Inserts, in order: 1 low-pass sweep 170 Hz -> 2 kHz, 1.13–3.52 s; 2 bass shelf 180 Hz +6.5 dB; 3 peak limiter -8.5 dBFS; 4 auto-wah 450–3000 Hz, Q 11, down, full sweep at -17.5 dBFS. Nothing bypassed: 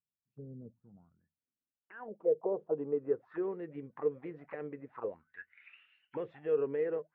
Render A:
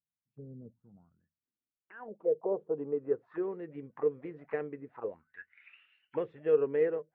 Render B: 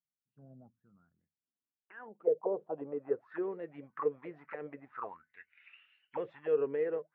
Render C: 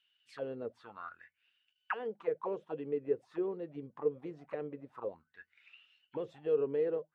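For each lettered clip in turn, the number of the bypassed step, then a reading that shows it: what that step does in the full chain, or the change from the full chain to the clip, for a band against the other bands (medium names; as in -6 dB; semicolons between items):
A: 3, momentary loudness spread change +2 LU; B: 2, crest factor change +3.0 dB; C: 1, 1 kHz band +4.5 dB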